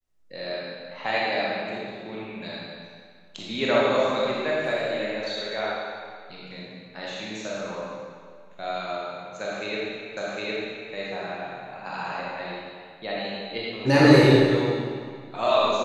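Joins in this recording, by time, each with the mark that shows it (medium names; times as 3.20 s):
10.17 s: repeat of the last 0.76 s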